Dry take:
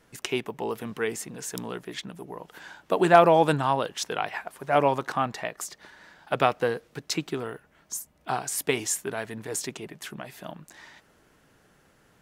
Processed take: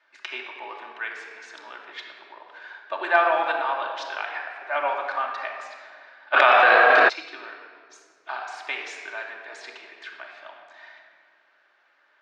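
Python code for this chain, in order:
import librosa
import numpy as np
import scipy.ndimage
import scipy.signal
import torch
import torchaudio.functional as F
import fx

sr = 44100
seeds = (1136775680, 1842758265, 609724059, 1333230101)

y = fx.cabinet(x, sr, low_hz=470.0, low_slope=24, high_hz=4800.0, hz=(470.0, 760.0, 1100.0, 1600.0, 2300.0, 3800.0), db=(-9, 3, 5, 9, 7, 4))
y = fx.room_shoebox(y, sr, seeds[0], volume_m3=3600.0, walls='mixed', distance_m=2.6)
y = fx.env_flatten(y, sr, amount_pct=100, at=(6.33, 7.08), fade=0.02)
y = y * librosa.db_to_amplitude(-7.5)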